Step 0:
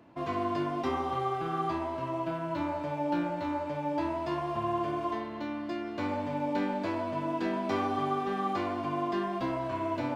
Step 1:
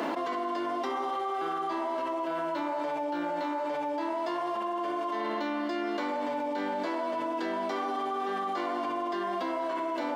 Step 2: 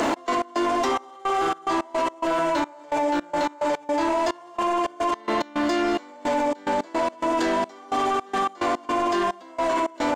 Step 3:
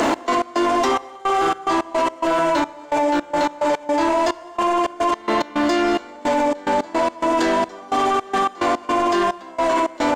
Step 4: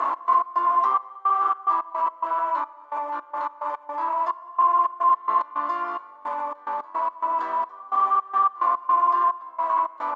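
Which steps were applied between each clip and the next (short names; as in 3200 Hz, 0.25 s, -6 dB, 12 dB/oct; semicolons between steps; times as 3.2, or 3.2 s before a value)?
Bessel high-pass 380 Hz, order 8; notch 2500 Hz, Q 8.5; fast leveller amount 100%; gain -2.5 dB
bell 7100 Hz +13 dB 0.67 oct; step gate "x.x.xxx..xx." 108 bpm -24 dB; in parallel at -4 dB: sine folder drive 7 dB, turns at -20 dBFS; on the sum: gain +1 dB
reverb, pre-delay 28 ms, DRR 20.5 dB; gain +4.5 dB
band-pass 1100 Hz, Q 13; gain +8 dB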